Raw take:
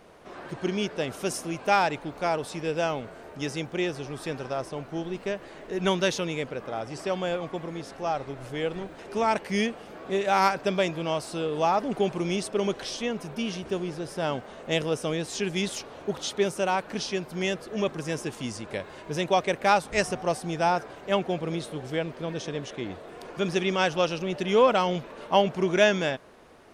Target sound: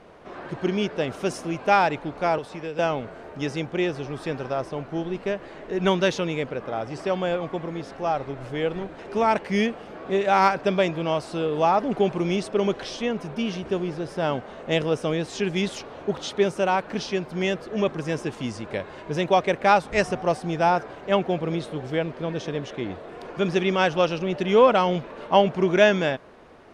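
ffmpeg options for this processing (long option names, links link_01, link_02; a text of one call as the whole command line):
ffmpeg -i in.wav -filter_complex "[0:a]asettb=1/sr,asplit=3[link_01][link_02][link_03];[link_01]atrim=end=2.384[link_04];[link_02]atrim=start=2.38:end=2.79,asetpts=PTS-STARTPTS,afade=type=in:duration=0.004:curve=qsin,afade=type=out:start_time=0.406:duration=0.004:curve=qsin,acrossover=split=450|2400[link_05][link_06][link_07];[link_05]acompressor=threshold=-41dB:ratio=4[link_08];[link_06]acompressor=threshold=-39dB:ratio=4[link_09];[link_07]acompressor=threshold=-47dB:ratio=4[link_10];[link_08][link_09][link_10]amix=inputs=3:normalize=0[link_11];[link_03]atrim=start=2.786[link_12];[link_04][link_11]acrossfade=duration=0.004:curve1=hsin:curve2=qsin[link_13];[link_13][link_12]acrossfade=duration=0.004:curve1=qsin:curve2=hsin,aemphasis=mode=reproduction:type=50fm,volume=3.5dB" out.wav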